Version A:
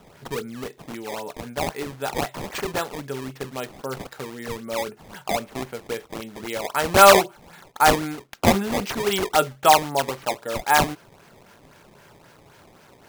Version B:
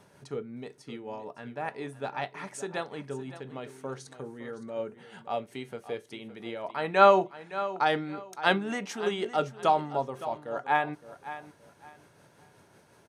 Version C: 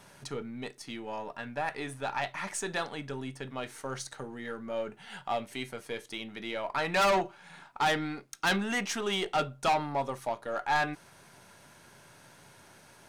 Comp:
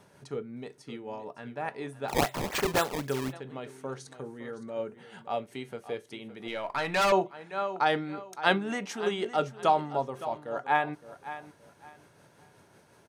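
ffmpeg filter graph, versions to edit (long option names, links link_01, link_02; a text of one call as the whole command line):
ffmpeg -i take0.wav -i take1.wav -i take2.wav -filter_complex "[1:a]asplit=3[link_01][link_02][link_03];[link_01]atrim=end=2.12[link_04];[0:a]atrim=start=2.08:end=3.34[link_05];[link_02]atrim=start=3.3:end=6.482[link_06];[2:a]atrim=start=6.478:end=7.122[link_07];[link_03]atrim=start=7.118[link_08];[link_04][link_05]acrossfade=duration=0.04:curve1=tri:curve2=tri[link_09];[link_09][link_06]acrossfade=duration=0.04:curve1=tri:curve2=tri[link_10];[link_10][link_07]acrossfade=duration=0.004:curve1=hsin:curve2=hsin[link_11];[link_11][link_08]acrossfade=duration=0.004:curve1=hsin:curve2=hsin" out.wav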